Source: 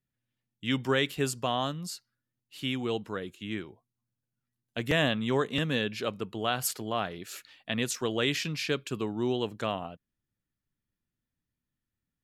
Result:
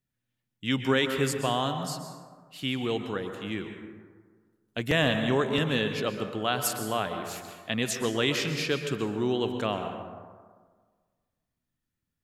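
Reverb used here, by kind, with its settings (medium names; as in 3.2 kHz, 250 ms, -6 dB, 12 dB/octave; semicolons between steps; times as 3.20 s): plate-style reverb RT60 1.6 s, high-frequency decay 0.4×, pre-delay 110 ms, DRR 6 dB; trim +1.5 dB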